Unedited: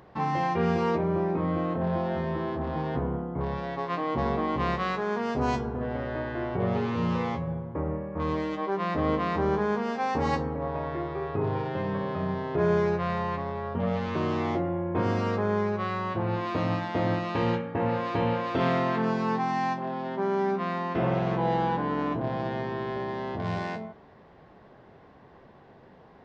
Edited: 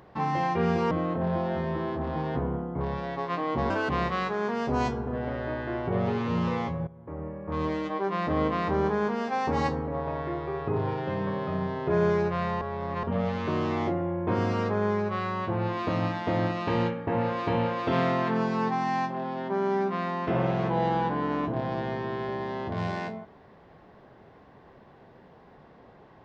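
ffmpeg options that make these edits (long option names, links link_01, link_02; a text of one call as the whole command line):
ffmpeg -i in.wav -filter_complex "[0:a]asplit=7[link_01][link_02][link_03][link_04][link_05][link_06][link_07];[link_01]atrim=end=0.912[link_08];[link_02]atrim=start=1.508:end=4.304[link_09];[link_03]atrim=start=4.3:end=4.57,asetpts=PTS-STARTPTS,asetrate=61740,aresample=44100[link_10];[link_04]atrim=start=4.566:end=7.55,asetpts=PTS-STARTPTS,afade=type=out:start_time=2.98:duration=0.004:curve=hsin:silence=0.141254[link_11];[link_05]atrim=start=7.55:end=13.292,asetpts=PTS-STARTPTS,afade=type=in:duration=0.79:silence=0.141254[link_12];[link_06]atrim=start=13.288:end=13.712,asetpts=PTS-STARTPTS,areverse[link_13];[link_07]atrim=start=13.708[link_14];[link_08][link_09]acrossfade=duration=0.004:curve1=hsin:curve2=hsin[link_15];[link_15][link_10]acrossfade=duration=0.004:curve1=hsin:curve2=hsin[link_16];[link_11][link_12]concat=n=2:v=0:a=1[link_17];[link_16][link_17]acrossfade=duration=0.004:curve1=hsin:curve2=hsin[link_18];[link_18][link_13]acrossfade=duration=0.004:curve1=hsin:curve2=hsin[link_19];[link_19][link_14]acrossfade=duration=0.004:curve1=hsin:curve2=hsin" out.wav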